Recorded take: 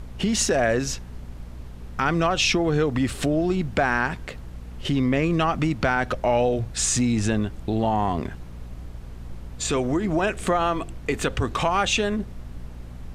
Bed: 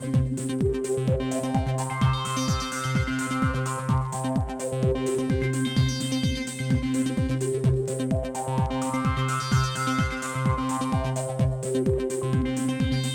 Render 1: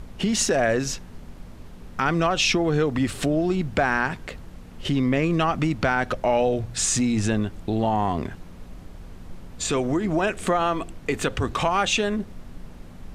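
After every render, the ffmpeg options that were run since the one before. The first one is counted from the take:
ffmpeg -i in.wav -af "bandreject=frequency=60:width_type=h:width=4,bandreject=frequency=120:width_type=h:width=4" out.wav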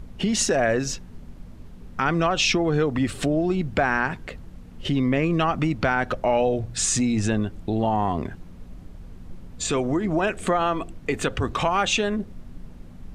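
ffmpeg -i in.wav -af "afftdn=noise_reduction=6:noise_floor=-42" out.wav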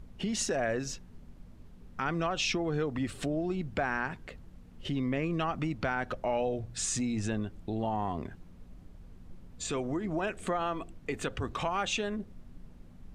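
ffmpeg -i in.wav -af "volume=-9.5dB" out.wav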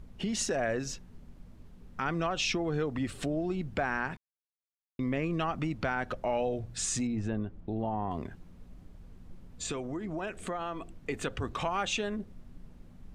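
ffmpeg -i in.wav -filter_complex "[0:a]asettb=1/sr,asplit=3[link_01][link_02][link_03];[link_01]atrim=end=7.074[link_04];[link_02]atrim=start=7.07:end=8.11,asetpts=PTS-STARTPTS,afade=type=in:duration=0.004:curve=qsin,afade=type=out:start_time=1.036:duration=0.004:curve=qsin,lowpass=frequency=1200:poles=1[link_05];[link_03]atrim=start=8.106[link_06];[link_04][link_05]acrossfade=duration=0.004:curve1=hsin:curve2=qsin[link_07];[link_07][link_06]acrossfade=duration=0.004:curve1=qsin:curve2=hsin,asettb=1/sr,asplit=3[link_08][link_09][link_10];[link_08]atrim=end=9.724[link_11];[link_09]atrim=start=9.72:end=11.01,asetpts=PTS-STARTPTS,afade=type=in:duration=0.004:curve=qsin,afade=type=out:start_time=1.286:duration=0.004:curve=qsin,acompressor=threshold=-38dB:ratio=1.5:attack=3.2:release=140:knee=1:detection=peak[link_12];[link_10]atrim=start=11.006[link_13];[link_11][link_12]acrossfade=duration=0.004:curve1=hsin:curve2=qsin[link_14];[link_14][link_13]acrossfade=duration=0.004:curve1=qsin:curve2=hsin,asplit=3[link_15][link_16][link_17];[link_15]atrim=end=4.17,asetpts=PTS-STARTPTS,afade=type=out:start_time=4.166:duration=0.004:curve=hsin[link_18];[link_16]atrim=start=4.17:end=4.99,asetpts=PTS-STARTPTS,volume=0[link_19];[link_17]atrim=start=4.99,asetpts=PTS-STARTPTS,afade=type=in:duration=0.004:curve=hsin[link_20];[link_18][link_19][link_20]concat=n=3:v=0:a=1" out.wav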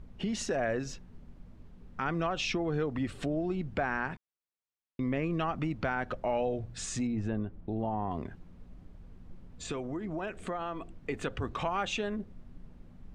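ffmpeg -i in.wav -af "lowpass=frequency=3500:poles=1" out.wav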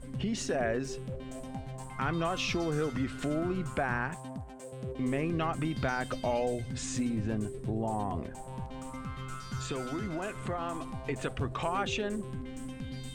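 ffmpeg -i in.wav -i bed.wav -filter_complex "[1:a]volume=-15.5dB[link_01];[0:a][link_01]amix=inputs=2:normalize=0" out.wav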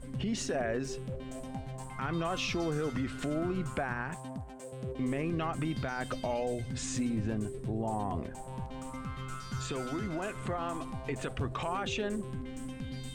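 ffmpeg -i in.wav -af "alimiter=limit=-24dB:level=0:latency=1" out.wav

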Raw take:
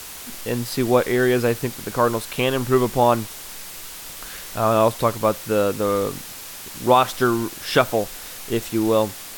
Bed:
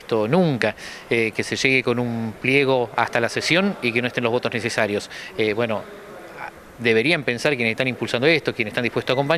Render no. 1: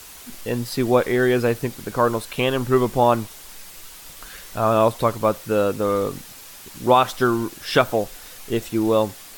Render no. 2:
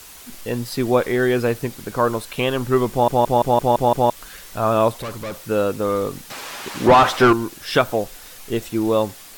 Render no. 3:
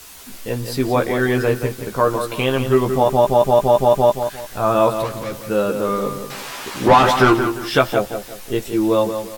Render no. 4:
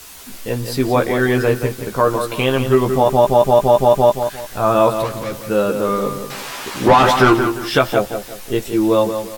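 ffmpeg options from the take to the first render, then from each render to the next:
ffmpeg -i in.wav -af "afftdn=noise_reduction=6:noise_floor=-37" out.wav
ffmpeg -i in.wav -filter_complex "[0:a]asettb=1/sr,asplit=3[link_01][link_02][link_03];[link_01]atrim=end=5.004[link_04];[link_02]atrim=start=5:end=5.47,asetpts=PTS-STARTPTS,afade=type=in:duration=0.004:curve=qsin,afade=type=out:start_time=0.466:duration=0.004:curve=qsin,volume=26.5dB,asoftclip=hard,volume=-26.5dB[link_05];[link_03]atrim=start=5.466[link_06];[link_04][link_05]acrossfade=duration=0.004:curve1=hsin:curve2=qsin[link_07];[link_07][link_06]acrossfade=duration=0.004:curve1=qsin:curve2=hsin,asettb=1/sr,asplit=3[link_08][link_09][link_10];[link_08]atrim=end=6.304[link_11];[link_09]atrim=start=6.3:end=7.33,asetpts=PTS-STARTPTS,afade=type=in:duration=0.004:curve=qsin,afade=type=out:start_time=1.026:duration=0.004:curve=qsin,asplit=2[link_12][link_13];[link_13]highpass=frequency=720:poles=1,volume=26dB,asoftclip=type=tanh:threshold=-3dB[link_14];[link_12][link_14]amix=inputs=2:normalize=0,lowpass=frequency=1300:poles=1,volume=-6dB[link_15];[link_10]atrim=start=7.326[link_16];[link_11][link_15]acrossfade=duration=0.004:curve1=hsin:curve2=qsin[link_17];[link_17][link_16]acrossfade=duration=0.004:curve1=qsin:curve2=hsin,asplit=8[link_18][link_19][link_20][link_21][link_22][link_23][link_24][link_25];[link_18]atrim=end=3.082[link_26];[link_19]atrim=start=2.908:end=3.082[link_27];[link_20]atrim=start=2.908:end=3.082[link_28];[link_21]atrim=start=2.908:end=3.082[link_29];[link_22]atrim=start=2.908:end=3.082[link_30];[link_23]atrim=start=2.908:end=3.082[link_31];[link_24]atrim=start=2.908:end=3.082[link_32];[link_25]atrim=start=4.098[link_33];[link_26][link_27]acrossfade=duration=0.004:curve1=hsin:curve2=hsin[link_34];[link_34][link_28]acrossfade=duration=0.004:curve1=hsin:curve2=hsin[link_35];[link_35][link_29]acrossfade=duration=0.004:curve1=hsin:curve2=hsin[link_36];[link_36][link_30]acrossfade=duration=0.004:curve1=hsin:curve2=hsin[link_37];[link_37][link_31]acrossfade=duration=0.004:curve1=hsin:curve2=hsin[link_38];[link_38][link_32]acrossfade=duration=0.004:curve1=hsin:curve2=hsin[link_39];[link_39][link_33]acrossfade=duration=0.004:curve1=hsin:curve2=hsin" out.wav
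ffmpeg -i in.wav -filter_complex "[0:a]asplit=2[link_01][link_02];[link_02]adelay=15,volume=-5dB[link_03];[link_01][link_03]amix=inputs=2:normalize=0,asplit=2[link_04][link_05];[link_05]adelay=175,lowpass=frequency=4200:poles=1,volume=-8dB,asplit=2[link_06][link_07];[link_07]adelay=175,lowpass=frequency=4200:poles=1,volume=0.32,asplit=2[link_08][link_09];[link_09]adelay=175,lowpass=frequency=4200:poles=1,volume=0.32,asplit=2[link_10][link_11];[link_11]adelay=175,lowpass=frequency=4200:poles=1,volume=0.32[link_12];[link_04][link_06][link_08][link_10][link_12]amix=inputs=5:normalize=0" out.wav
ffmpeg -i in.wav -af "volume=2dB,alimiter=limit=-2dB:level=0:latency=1" out.wav

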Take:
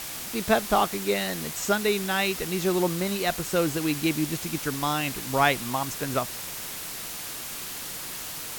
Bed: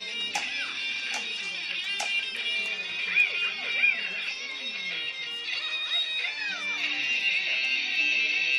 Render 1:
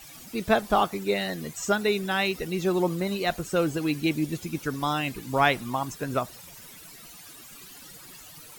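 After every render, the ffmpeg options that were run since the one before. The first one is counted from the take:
ffmpeg -i in.wav -af "afftdn=noise_reduction=15:noise_floor=-36" out.wav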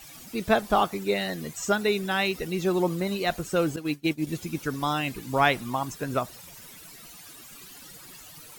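ffmpeg -i in.wav -filter_complex "[0:a]asettb=1/sr,asplit=3[link_01][link_02][link_03];[link_01]atrim=end=3.764[link_04];[link_02]atrim=start=3.76:end=4.27,asetpts=PTS-STARTPTS,afade=type=in:duration=0.004:curve=qsin,afade=type=out:start_time=0.506:duration=0.004:curve=qsin,agate=range=-33dB:threshold=-23dB:ratio=3:release=100:detection=peak[link_05];[link_03]atrim=start=4.266[link_06];[link_04][link_05]acrossfade=duration=0.004:curve1=hsin:curve2=qsin[link_07];[link_07][link_06]acrossfade=duration=0.004:curve1=qsin:curve2=hsin" out.wav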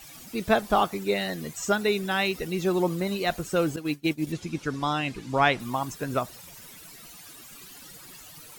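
ffmpeg -i in.wav -filter_complex "[0:a]asettb=1/sr,asplit=3[link_01][link_02][link_03];[link_01]atrim=end=4.324[link_04];[link_02]atrim=start=4.32:end=5.6,asetpts=PTS-STARTPTS,afade=type=in:duration=0.004:curve=qsin,afade=type=out:start_time=1.276:duration=0.004:curve=qsin,lowpass=6800[link_05];[link_03]atrim=start=5.596[link_06];[link_04][link_05]acrossfade=duration=0.004:curve1=hsin:curve2=qsin[link_07];[link_07][link_06]acrossfade=duration=0.004:curve1=qsin:curve2=hsin" out.wav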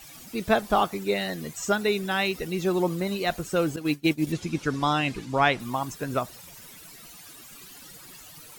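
ffmpeg -i in.wav -filter_complex "[0:a]asplit=3[link_01][link_02][link_03];[link_01]atrim=end=3.812[link_04];[link_02]atrim=start=3.808:end=5.252,asetpts=PTS-STARTPTS,volume=3dB[link_05];[link_03]atrim=start=5.248[link_06];[link_04][link_05]acrossfade=duration=0.004:curve1=hsin:curve2=hsin[link_07];[link_07][link_06]acrossfade=duration=0.004:curve1=hsin:curve2=hsin" out.wav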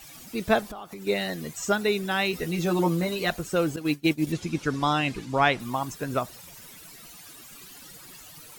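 ffmpeg -i in.wav -filter_complex "[0:a]asettb=1/sr,asplit=3[link_01][link_02][link_03];[link_01]atrim=end=0.634[link_04];[link_02]atrim=start=0.63:end=1.07,asetpts=PTS-STARTPTS,afade=type=in:duration=0.004:curve=qsin,afade=type=out:start_time=0.436:duration=0.004:curve=qsin,acompressor=threshold=-35dB:ratio=12:attack=3.2:release=140:knee=1:detection=peak[link_05];[link_03]atrim=start=1.066[link_06];[link_04][link_05]acrossfade=duration=0.004:curve1=hsin:curve2=qsin[link_07];[link_07][link_06]acrossfade=duration=0.004:curve1=qsin:curve2=hsin,asettb=1/sr,asplit=3[link_08][link_09][link_10];[link_08]atrim=end=2.324[link_11];[link_09]atrim=start=2.32:end=3.3,asetpts=PTS-STARTPTS,afade=type=in:duration=0.004:curve=qsin,afade=type=out:start_time=0.976:duration=0.004:curve=qsin,asplit=2[link_12][link_13];[link_13]adelay=12,volume=-2dB[link_14];[link_12][link_14]amix=inputs=2:normalize=0,atrim=end_sample=43218[link_15];[link_10]atrim=start=3.296[link_16];[link_11][link_15]acrossfade=duration=0.004:curve1=hsin:curve2=qsin[link_17];[link_17][link_16]acrossfade=duration=0.004:curve1=qsin:curve2=hsin" out.wav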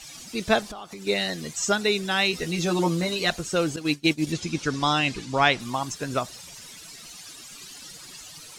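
ffmpeg -i in.wav -af "lowpass=10000,equalizer=frequency=5400:width=0.62:gain=8.5" out.wav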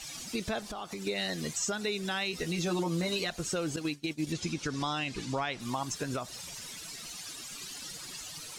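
ffmpeg -i in.wav -af "acompressor=threshold=-31dB:ratio=1.5,alimiter=limit=-22.5dB:level=0:latency=1:release=139" out.wav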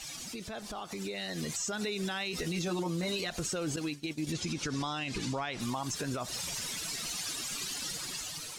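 ffmpeg -i in.wav -af "alimiter=level_in=7.5dB:limit=-24dB:level=0:latency=1:release=72,volume=-7.5dB,dynaudnorm=framelen=500:gausssize=5:maxgain=6dB" out.wav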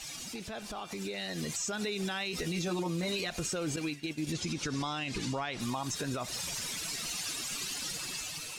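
ffmpeg -i in.wav -i bed.wav -filter_complex "[1:a]volume=-24.5dB[link_01];[0:a][link_01]amix=inputs=2:normalize=0" out.wav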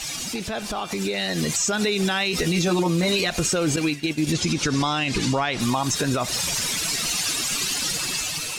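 ffmpeg -i in.wav -af "volume=12dB" out.wav

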